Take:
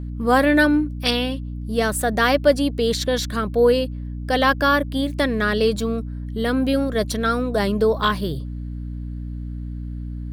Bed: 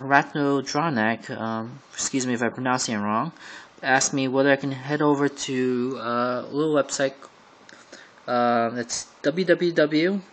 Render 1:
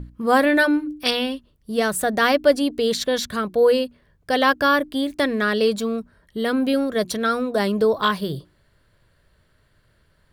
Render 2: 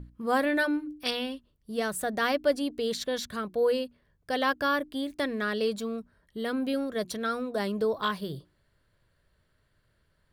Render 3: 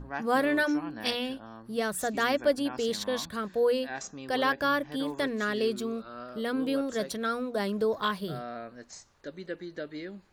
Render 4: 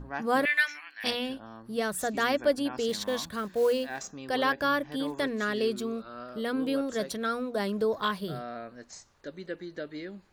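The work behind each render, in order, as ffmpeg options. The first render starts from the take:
-af "bandreject=f=60:t=h:w=6,bandreject=f=120:t=h:w=6,bandreject=f=180:t=h:w=6,bandreject=f=240:t=h:w=6,bandreject=f=300:t=h:w=6,bandreject=f=360:t=h:w=6"
-af "volume=0.355"
-filter_complex "[1:a]volume=0.119[s0];[0:a][s0]amix=inputs=2:normalize=0"
-filter_complex "[0:a]asettb=1/sr,asplit=3[s0][s1][s2];[s0]atrim=end=0.454[s3];[s1]atrim=start=0.45:end=1.04,asetpts=PTS-STARTPTS,afade=t=in:d=0.004:c=qsin,afade=t=out:st=0.586:d=0.004:c=qsin,highpass=f=2100:t=q:w=4.6[s4];[s2]atrim=start=1.036[s5];[s3][s4]acrossfade=d=0.004:c1=hsin:c2=qsin[s6];[s6][s5]acrossfade=d=0.004:c1=qsin:c2=hsin,asettb=1/sr,asplit=3[s7][s8][s9];[s7]atrim=end=2.894[s10];[s8]atrim=start=2.89:end=4.12,asetpts=PTS-STARTPTS,afade=t=in:d=0.004:c=qsin,afade=t=out:st=1.226:d=0.004:c=qsin,acrusher=bits=6:mode=log:mix=0:aa=0.000001[s11];[s9]atrim=start=4.116[s12];[s10][s11]acrossfade=d=0.004:c1=hsin:c2=qsin[s13];[s13][s12]acrossfade=d=0.004:c1=qsin:c2=hsin"

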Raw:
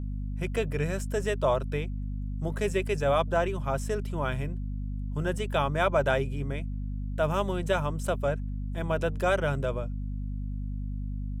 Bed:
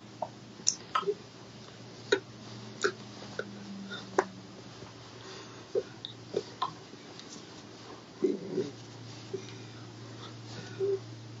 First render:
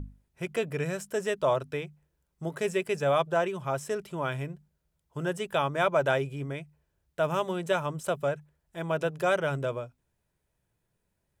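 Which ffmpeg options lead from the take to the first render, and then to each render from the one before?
-af "bandreject=f=50:t=h:w=6,bandreject=f=100:t=h:w=6,bandreject=f=150:t=h:w=6,bandreject=f=200:t=h:w=6,bandreject=f=250:t=h:w=6"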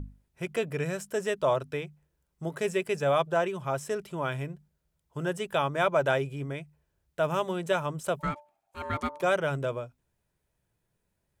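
-filter_complex "[0:a]asplit=3[s0][s1][s2];[s0]afade=t=out:st=8.19:d=0.02[s3];[s1]aeval=exprs='val(0)*sin(2*PI*740*n/s)':c=same,afade=t=in:st=8.19:d=0.02,afade=t=out:st=9.21:d=0.02[s4];[s2]afade=t=in:st=9.21:d=0.02[s5];[s3][s4][s5]amix=inputs=3:normalize=0"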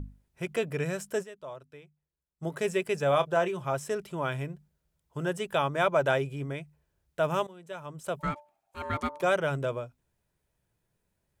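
-filter_complex "[0:a]asettb=1/sr,asplit=3[s0][s1][s2];[s0]atrim=end=3.084[s3];[s1]atrim=start=3.08:end=3.73,asetpts=PTS-STARTPTS,afade=t=in:d=0.004:c=qsin,afade=t=out:st=0.646:d=0.004:c=qsin,asplit=2[s4][s5];[s5]adelay=28,volume=0.237[s6];[s4][s6]amix=inputs=2:normalize=0,atrim=end_sample=28665[s7];[s2]atrim=start=3.726[s8];[s3][s7]acrossfade=d=0.004:c1=hsin:c2=qsin[s9];[s9][s8]acrossfade=d=0.004:c1=qsin:c2=hsin,asplit=4[s10][s11][s12][s13];[s10]atrim=end=1.36,asetpts=PTS-STARTPTS,afade=t=out:st=1.22:d=0.14:c=exp:silence=0.149624[s14];[s11]atrim=start=1.36:end=2.29,asetpts=PTS-STARTPTS,volume=0.15[s15];[s12]atrim=start=2.29:end=7.47,asetpts=PTS-STARTPTS,afade=t=in:d=0.14:c=exp:silence=0.149624,afade=t=out:st=5.176:d=0.004:c=hsin:silence=0.125893[s16];[s13]atrim=start=7.47,asetpts=PTS-STARTPTS,afade=t=in:d=0.82:c=qua:silence=0.125893[s17];[s14][s15][s16][s17]concat=n=4:v=0:a=1"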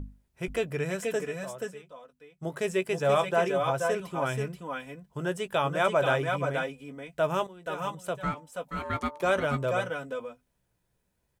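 -filter_complex "[0:a]asplit=2[s0][s1];[s1]adelay=16,volume=0.251[s2];[s0][s2]amix=inputs=2:normalize=0,aecho=1:1:479|483:0.447|0.447"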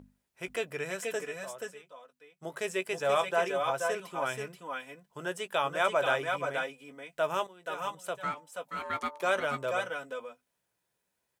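-af "highpass=f=660:p=1"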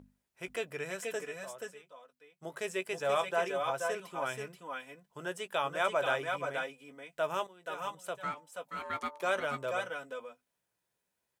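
-af "volume=0.708"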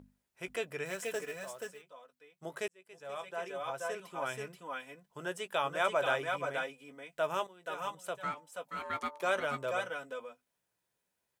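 -filter_complex "[0:a]asettb=1/sr,asplit=3[s0][s1][s2];[s0]atrim=end=0.854[s3];[s1]atrim=start=0.85:end=1.82,asetpts=PTS-STARTPTS,afade=t=in:d=0.004:c=qsin,afade=t=out:st=0.966:d=0.004:c=qsin,acrusher=bits=4:mode=log:mix=0:aa=0.000001[s4];[s2]atrim=start=1.816[s5];[s3][s4]acrossfade=d=0.004:c1=hsin:c2=qsin[s6];[s6][s5]acrossfade=d=0.004:c1=qsin:c2=hsin,asplit=2[s7][s8];[s7]atrim=end=2.68,asetpts=PTS-STARTPTS,afade=t=out:st=2.676:d=0.004:c=hsin[s9];[s8]atrim=start=2.68,asetpts=PTS-STARTPTS,afade=t=in:d=1.85[s10];[s9][s10]concat=n=2:v=0:a=1"

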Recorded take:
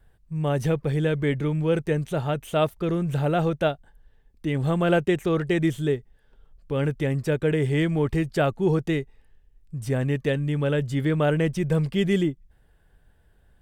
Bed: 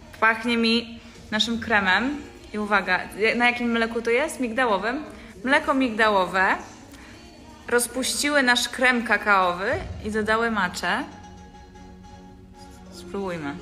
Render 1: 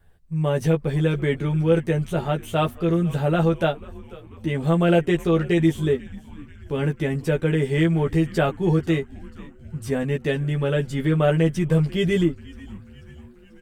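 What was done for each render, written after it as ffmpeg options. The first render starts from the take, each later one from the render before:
-filter_complex "[0:a]asplit=2[s0][s1];[s1]adelay=12,volume=0.75[s2];[s0][s2]amix=inputs=2:normalize=0,asplit=6[s3][s4][s5][s6][s7][s8];[s4]adelay=489,afreqshift=-130,volume=0.1[s9];[s5]adelay=978,afreqshift=-260,volume=0.0603[s10];[s6]adelay=1467,afreqshift=-390,volume=0.0359[s11];[s7]adelay=1956,afreqshift=-520,volume=0.0216[s12];[s8]adelay=2445,afreqshift=-650,volume=0.013[s13];[s3][s9][s10][s11][s12][s13]amix=inputs=6:normalize=0"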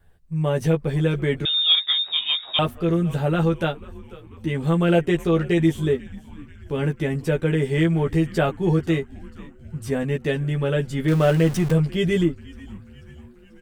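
-filter_complex "[0:a]asettb=1/sr,asplit=3[s0][s1][s2];[s0]atrim=end=1.454[s3];[s1]atrim=start=1.45:end=2.59,asetpts=PTS-STARTPTS,afade=t=in:d=0.004:c=qsin,afade=t=out:st=1.136:d=0.004:c=qsin,lowpass=f=3200:t=q:w=0.5098,lowpass=f=3200:t=q:w=0.6013,lowpass=f=3200:t=q:w=0.9,lowpass=f=3200:t=q:w=2.563,afreqshift=-3800[s4];[s2]atrim=start=2.586[s5];[s3][s4]acrossfade=d=0.004:c1=hsin:c2=qsin[s6];[s6][s5]acrossfade=d=0.004:c1=qsin:c2=hsin,asettb=1/sr,asplit=3[s7][s8][s9];[s7]atrim=end=3.274[s10];[s8]atrim=start=3.27:end=4.94,asetpts=PTS-STARTPTS,afade=t=in:d=0.004:c=qsin,afade=t=out:st=1.666:d=0.004:c=qsin,equalizer=f=650:w=3.7:g=-7[s11];[s9]atrim=start=4.936[s12];[s10][s11]acrossfade=d=0.004:c1=hsin:c2=qsin[s13];[s13][s12]acrossfade=d=0.004:c1=qsin:c2=hsin,asettb=1/sr,asplit=3[s14][s15][s16];[s14]atrim=end=11.084[s17];[s15]atrim=start=11.08:end=11.72,asetpts=PTS-STARTPTS,afade=t=in:d=0.004:c=qsin,afade=t=out:st=0.636:d=0.004:c=qsin,aeval=exprs='val(0)+0.5*0.0422*sgn(val(0))':c=same[s18];[s16]atrim=start=11.716[s19];[s17][s18]acrossfade=d=0.004:c1=hsin:c2=qsin[s20];[s20][s19]acrossfade=d=0.004:c1=qsin:c2=hsin"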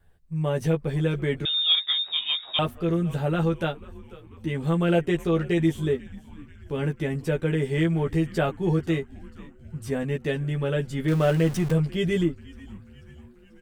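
-af "volume=0.668"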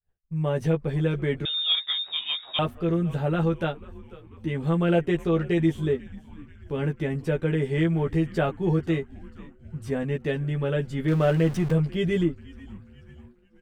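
-af "agate=range=0.0224:threshold=0.00562:ratio=3:detection=peak,highshelf=f=5100:g=-9"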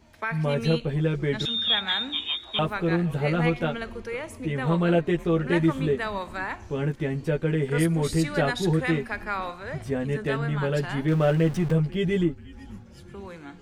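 -filter_complex "[1:a]volume=0.266[s0];[0:a][s0]amix=inputs=2:normalize=0"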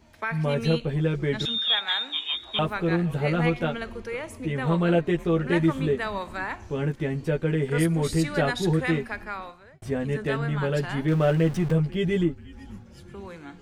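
-filter_complex "[0:a]asettb=1/sr,asplit=3[s0][s1][s2];[s0]atrim=end=1.584[s3];[s1]atrim=start=1.58:end=2.33,asetpts=PTS-STARTPTS,afade=t=in:d=0.004:c=qsin,afade=t=out:st=0.746:d=0.004:c=qsin,highpass=500[s4];[s2]atrim=start=2.326[s5];[s3][s4]acrossfade=d=0.004:c1=hsin:c2=qsin[s6];[s6][s5]acrossfade=d=0.004:c1=qsin:c2=hsin,asplit=2[s7][s8];[s7]atrim=end=9.82,asetpts=PTS-STARTPTS,afade=t=out:st=8.98:d=0.84[s9];[s8]atrim=start=9.82,asetpts=PTS-STARTPTS,afade=t=in:d=0.004:c=hsin[s10];[s9][s10]concat=n=2:v=0:a=1"

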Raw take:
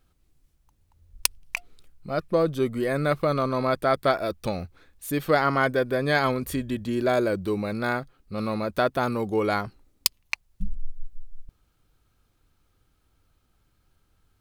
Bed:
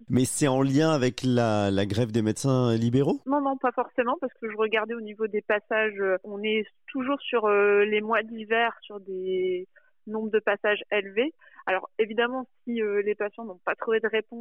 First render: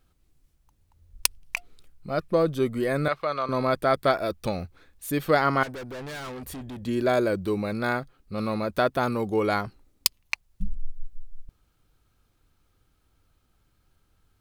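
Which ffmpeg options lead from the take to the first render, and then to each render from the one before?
-filter_complex "[0:a]asettb=1/sr,asplit=3[s0][s1][s2];[s0]atrim=end=3.084[s3];[s1]atrim=start=3.08:end=3.49,asetpts=PTS-STARTPTS,afade=t=in:d=0.004:c=qsin,afade=t=out:st=0.406:d=0.004:c=qsin,acrossover=split=570 5900:gain=0.178 1 0.178[s4][s5][s6];[s4][s5][s6]amix=inputs=3:normalize=0[s7];[s2]atrim=start=3.486[s8];[s3][s7]acrossfade=d=0.004:c1=hsin:c2=qsin[s9];[s9][s8]acrossfade=d=0.004:c1=qsin:c2=hsin,asettb=1/sr,asplit=3[s10][s11][s12];[s10]atrim=end=5.634[s13];[s11]atrim=start=5.63:end=6.83,asetpts=PTS-STARTPTS,afade=t=in:d=0.004:c=qsin,afade=t=out:st=1.196:d=0.004:c=qsin,aeval=exprs='(tanh(56.2*val(0)+0.2)-tanh(0.2))/56.2':c=same[s14];[s12]atrim=start=6.826[s15];[s13][s14]acrossfade=d=0.004:c1=hsin:c2=qsin[s16];[s16][s15]acrossfade=d=0.004:c1=qsin:c2=hsin"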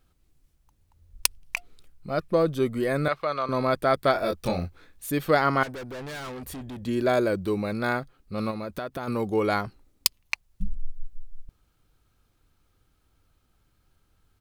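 -filter_complex "[0:a]asplit=3[s0][s1][s2];[s0]afade=t=out:st=4.14:d=0.02[s3];[s1]asplit=2[s4][s5];[s5]adelay=23,volume=0.75[s6];[s4][s6]amix=inputs=2:normalize=0,afade=t=in:st=4.14:d=0.02,afade=t=out:st=5.05:d=0.02[s7];[s2]afade=t=in:st=5.05:d=0.02[s8];[s3][s7][s8]amix=inputs=3:normalize=0,asplit=3[s9][s10][s11];[s9]afade=t=out:st=8.5:d=0.02[s12];[s10]acompressor=threshold=0.0355:ratio=6:attack=3.2:release=140:knee=1:detection=peak,afade=t=in:st=8.5:d=0.02,afade=t=out:st=9.07:d=0.02[s13];[s11]afade=t=in:st=9.07:d=0.02[s14];[s12][s13][s14]amix=inputs=3:normalize=0"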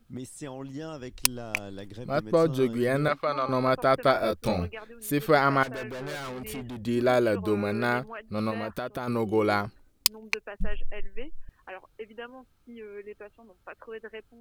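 -filter_complex "[1:a]volume=0.158[s0];[0:a][s0]amix=inputs=2:normalize=0"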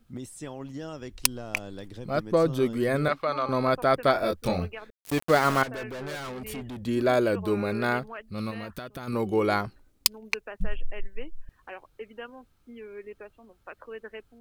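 -filter_complex "[0:a]asettb=1/sr,asplit=3[s0][s1][s2];[s0]atrim=end=4.904[s3];[s1]atrim=start=4.9:end=5.62,asetpts=PTS-STARTPTS,afade=t=in:d=0.004:c=qsin,afade=t=out:st=0.716:d=0.004:c=qsin,aeval=exprs='val(0)*gte(abs(val(0)),0.0398)':c=same[s4];[s2]atrim=start=5.616[s5];[s3][s4]acrossfade=d=0.004:c1=hsin:c2=qsin[s6];[s6][s5]acrossfade=d=0.004:c1=qsin:c2=hsin,asettb=1/sr,asplit=3[s7][s8][s9];[s7]atrim=end=8.224[s10];[s8]atrim=start=8.22:end=9.13,asetpts=PTS-STARTPTS,afade=t=in:d=0.004:c=qsin,afade=t=out:st=0.906:d=0.004:c=qsin,equalizer=f=660:w=0.5:g=-7.5[s11];[s9]atrim=start=9.126[s12];[s10][s11]acrossfade=d=0.004:c1=hsin:c2=qsin[s13];[s13][s12]acrossfade=d=0.004:c1=qsin:c2=hsin"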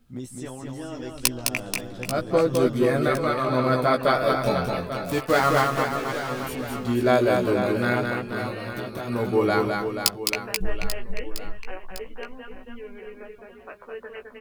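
-filter_complex "[0:a]asplit=2[s0][s1];[s1]adelay=16,volume=0.631[s2];[s0][s2]amix=inputs=2:normalize=0,aecho=1:1:210|483|837.9|1299|1899:0.631|0.398|0.251|0.158|0.1"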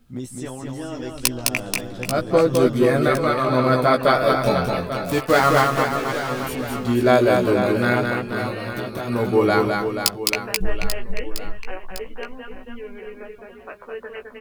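-af "volume=1.58,alimiter=limit=0.794:level=0:latency=1"

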